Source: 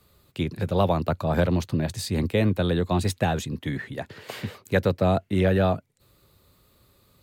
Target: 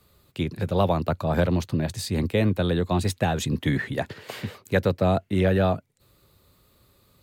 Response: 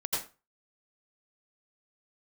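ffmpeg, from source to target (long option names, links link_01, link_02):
-filter_complex "[0:a]asplit=3[link_01][link_02][link_03];[link_01]afade=type=out:start_time=3.4:duration=0.02[link_04];[link_02]acontrast=43,afade=type=in:start_time=3.4:duration=0.02,afade=type=out:start_time=4.12:duration=0.02[link_05];[link_03]afade=type=in:start_time=4.12:duration=0.02[link_06];[link_04][link_05][link_06]amix=inputs=3:normalize=0"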